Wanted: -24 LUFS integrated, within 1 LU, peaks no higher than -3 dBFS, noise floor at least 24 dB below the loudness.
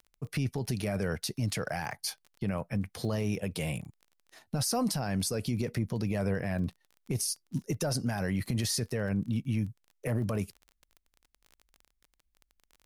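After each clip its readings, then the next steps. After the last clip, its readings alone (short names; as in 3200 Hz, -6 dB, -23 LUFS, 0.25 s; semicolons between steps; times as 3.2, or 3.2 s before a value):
ticks 21/s; loudness -33.0 LUFS; peak -19.0 dBFS; loudness target -24.0 LUFS
-> de-click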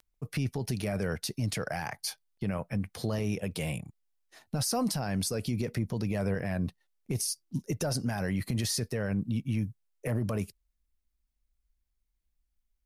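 ticks 0.16/s; loudness -33.0 LUFS; peak -19.0 dBFS; loudness target -24.0 LUFS
-> gain +9 dB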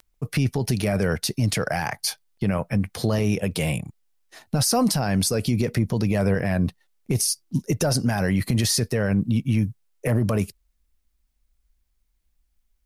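loudness -24.0 LUFS; peak -10.0 dBFS; noise floor -70 dBFS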